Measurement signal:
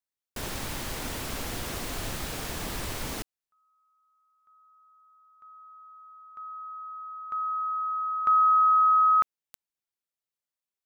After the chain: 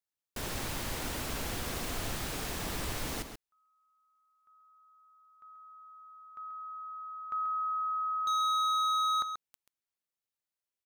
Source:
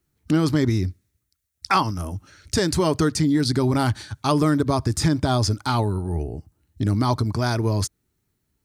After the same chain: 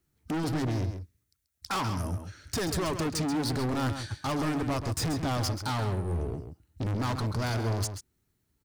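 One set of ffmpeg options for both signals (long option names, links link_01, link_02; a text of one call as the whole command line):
ffmpeg -i in.wav -filter_complex "[0:a]volume=25.5dB,asoftclip=hard,volume=-25.5dB,asplit=2[link_01][link_02];[link_02]adelay=134.1,volume=-8dB,highshelf=frequency=4000:gain=-3.02[link_03];[link_01][link_03]amix=inputs=2:normalize=0,volume=-2.5dB" out.wav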